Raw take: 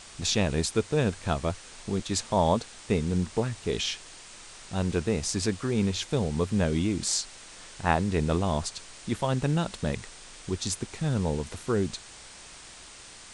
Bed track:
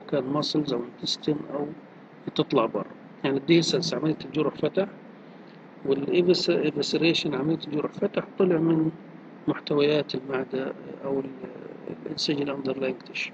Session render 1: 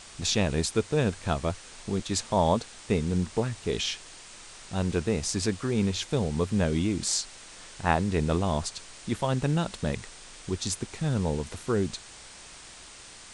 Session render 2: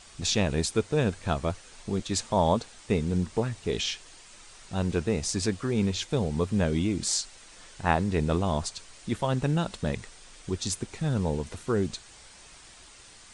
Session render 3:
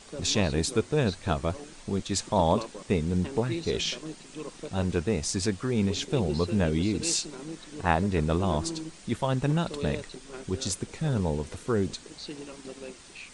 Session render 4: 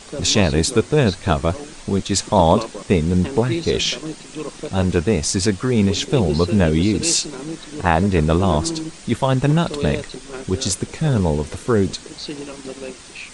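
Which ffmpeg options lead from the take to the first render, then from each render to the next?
-af anull
-af "afftdn=nr=6:nf=-48"
-filter_complex "[1:a]volume=0.2[s0];[0:a][s0]amix=inputs=2:normalize=0"
-af "volume=2.99,alimiter=limit=0.794:level=0:latency=1"

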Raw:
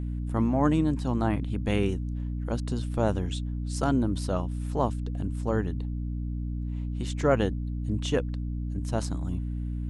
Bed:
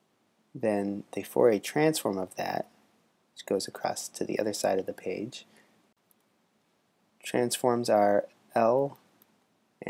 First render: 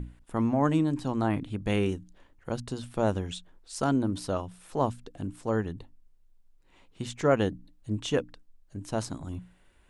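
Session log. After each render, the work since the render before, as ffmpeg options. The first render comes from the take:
-af "bandreject=f=60:t=h:w=6,bandreject=f=120:t=h:w=6,bandreject=f=180:t=h:w=6,bandreject=f=240:t=h:w=6,bandreject=f=300:t=h:w=6"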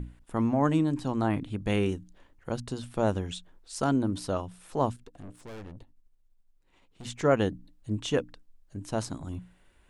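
-filter_complex "[0:a]asettb=1/sr,asplit=3[s0][s1][s2];[s0]atrim=end=4.964[s3];[s1]atrim=start=4.96:end=7.05,asetpts=PTS-STARTPTS,afade=t=in:d=0.004:c=qsin,afade=t=out:st=2.086:d=0.004:c=qsin,aeval=exprs='(tanh(112*val(0)+0.8)-tanh(0.8))/112':c=same[s4];[s2]atrim=start=7.046[s5];[s3][s4]acrossfade=d=0.004:c1=hsin:c2=qsin[s6];[s6][s5]acrossfade=d=0.004:c1=qsin:c2=hsin"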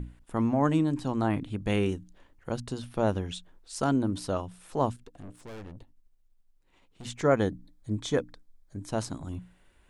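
-filter_complex "[0:a]asettb=1/sr,asplit=3[s0][s1][s2];[s0]atrim=end=2.824[s3];[s1]atrim=start=2.82:end=3.34,asetpts=PTS-STARTPTS,afade=t=in:d=0.004:c=qsin,afade=t=out:st=0.516:d=0.004:c=qsin,equalizer=f=7700:w=5.1:g=-12[s4];[s2]atrim=start=3.336[s5];[s3][s4]acrossfade=d=0.004:c1=hsin:c2=qsin[s6];[s6][s5]acrossfade=d=0.004:c1=qsin:c2=hsin,asettb=1/sr,asplit=3[s7][s8][s9];[s7]atrim=end=7.224[s10];[s8]atrim=start=7.22:end=8.89,asetpts=PTS-STARTPTS,afade=t=in:d=0.004:c=qsin,afade=t=out:st=1.666:d=0.004:c=qsin,asuperstop=centerf=2800:order=4:qfactor=5.5[s11];[s9]atrim=start=8.886[s12];[s10][s11]acrossfade=d=0.004:c1=hsin:c2=qsin[s13];[s13][s12]acrossfade=d=0.004:c1=qsin:c2=hsin"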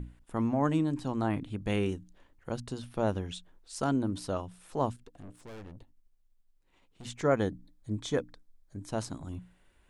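-af "volume=0.708"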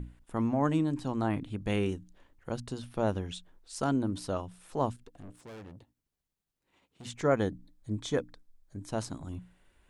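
-filter_complex "[0:a]asettb=1/sr,asplit=3[s0][s1][s2];[s0]atrim=end=5.404[s3];[s1]atrim=start=5.4:end=7.14,asetpts=PTS-STARTPTS,afade=t=in:d=0.004:c=qsin,afade=t=out:st=1.736:d=0.004:c=qsin,highpass=79[s4];[s2]atrim=start=7.136[s5];[s3][s4]acrossfade=d=0.004:c1=hsin:c2=qsin[s6];[s6][s5]acrossfade=d=0.004:c1=qsin:c2=hsin"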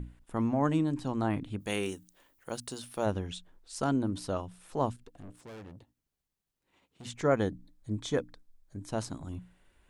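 -filter_complex "[0:a]asplit=3[s0][s1][s2];[s0]afade=t=out:st=1.59:d=0.02[s3];[s1]aemphasis=mode=production:type=bsi,afade=t=in:st=1.59:d=0.02,afade=t=out:st=3.05:d=0.02[s4];[s2]afade=t=in:st=3.05:d=0.02[s5];[s3][s4][s5]amix=inputs=3:normalize=0"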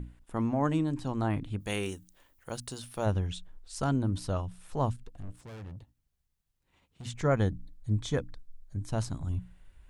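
-af "asubboost=boost=4:cutoff=140"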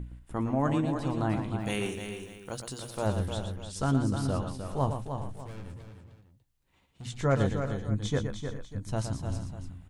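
-filter_complex "[0:a]asplit=2[s0][s1];[s1]adelay=15,volume=0.282[s2];[s0][s2]amix=inputs=2:normalize=0,asplit=2[s3][s4];[s4]aecho=0:1:116|306|379|422|595:0.398|0.422|0.15|0.158|0.141[s5];[s3][s5]amix=inputs=2:normalize=0"

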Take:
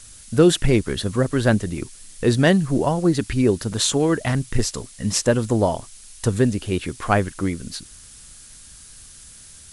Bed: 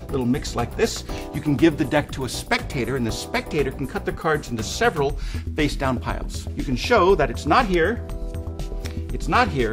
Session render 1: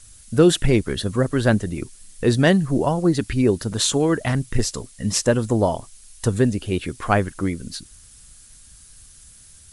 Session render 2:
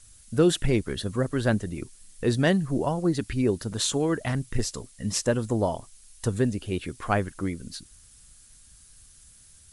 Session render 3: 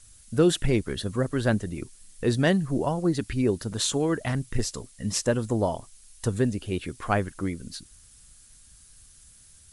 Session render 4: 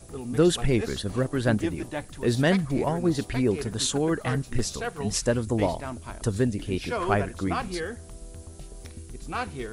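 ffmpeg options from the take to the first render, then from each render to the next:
-af "afftdn=nr=6:nf=-44"
-af "volume=0.501"
-af anull
-filter_complex "[1:a]volume=0.224[s0];[0:a][s0]amix=inputs=2:normalize=0"

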